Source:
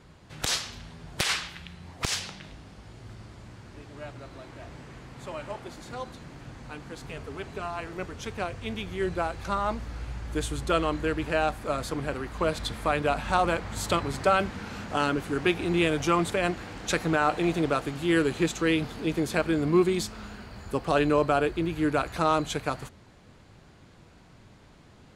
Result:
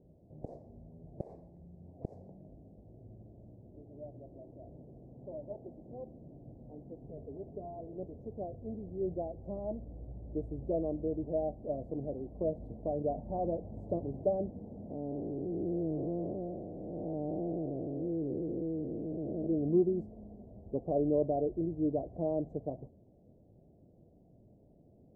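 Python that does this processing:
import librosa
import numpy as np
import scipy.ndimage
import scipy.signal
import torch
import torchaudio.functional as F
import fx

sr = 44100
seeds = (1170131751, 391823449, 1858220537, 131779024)

y = fx.spec_blur(x, sr, span_ms=417.0, at=(14.89, 19.46), fade=0.02)
y = scipy.signal.sosfilt(scipy.signal.ellip(4, 1.0, 50, 660.0, 'lowpass', fs=sr, output='sos'), y)
y = fx.low_shelf(y, sr, hz=93.0, db=-6.5)
y = y * 10.0 ** (-4.5 / 20.0)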